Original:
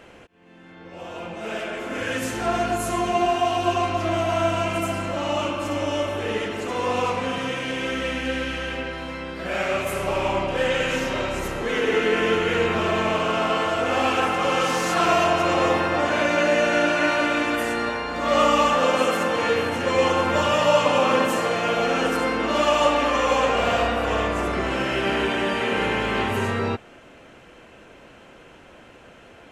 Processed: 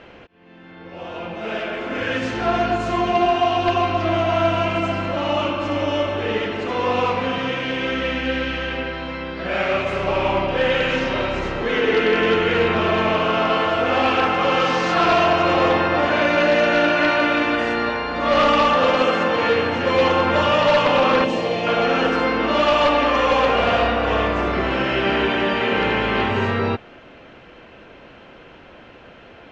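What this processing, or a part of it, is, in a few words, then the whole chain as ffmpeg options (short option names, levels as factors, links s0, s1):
synthesiser wavefolder: -filter_complex "[0:a]aeval=exprs='0.224*(abs(mod(val(0)/0.224+3,4)-2)-1)':c=same,lowpass=f=4800:w=0.5412,lowpass=f=4800:w=1.3066,asettb=1/sr,asplit=3[s0][s1][s2];[s0]atrim=end=21.244[s3];[s1]atrim=start=21.24:end=21.67,asetpts=PTS-STARTPTS,afade=t=in:d=0.004:c=qsin,afade=t=out:st=0.426:d=0.004:c=qsin,equalizer=f=1400:w=1.8:g=-14[s4];[s2]atrim=start=21.666[s5];[s3][s4]acrossfade=d=0.004:c1=hsin:c2=qsin[s6];[s6][s5]acrossfade=d=0.004:c1=qsin:c2=hsin,volume=1.5"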